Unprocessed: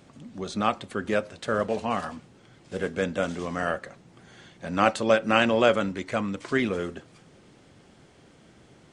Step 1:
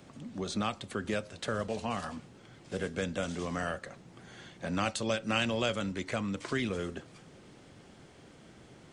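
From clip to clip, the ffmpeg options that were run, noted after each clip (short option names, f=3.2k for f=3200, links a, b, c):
-filter_complex "[0:a]acrossover=split=150|3000[a][b][c];[b]acompressor=threshold=-34dB:ratio=3[d];[a][d][c]amix=inputs=3:normalize=0"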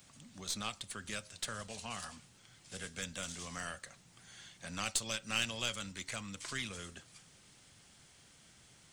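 -af "equalizer=f=370:w=0.69:g=-10.5,crystalizer=i=3.5:c=0,aeval=exprs='0.282*(cos(1*acos(clip(val(0)/0.282,-1,1)))-cos(1*PI/2))+0.02*(cos(6*acos(clip(val(0)/0.282,-1,1)))-cos(6*PI/2))':c=same,volume=-7dB"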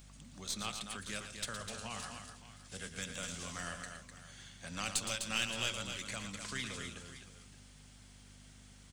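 -filter_complex "[0:a]aeval=exprs='val(0)+0.00178*(sin(2*PI*50*n/s)+sin(2*PI*2*50*n/s)/2+sin(2*PI*3*50*n/s)/3+sin(2*PI*4*50*n/s)/4+sin(2*PI*5*50*n/s)/5)':c=same,asplit=2[a][b];[b]aecho=0:1:115|252|569:0.355|0.447|0.168[c];[a][c]amix=inputs=2:normalize=0,volume=-1dB"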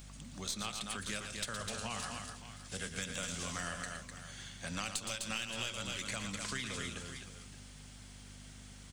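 -af "acompressor=threshold=-40dB:ratio=6,volume=5dB"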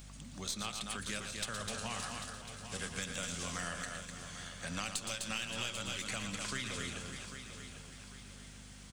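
-af "aecho=1:1:795|1590|2385|3180:0.299|0.11|0.0409|0.0151"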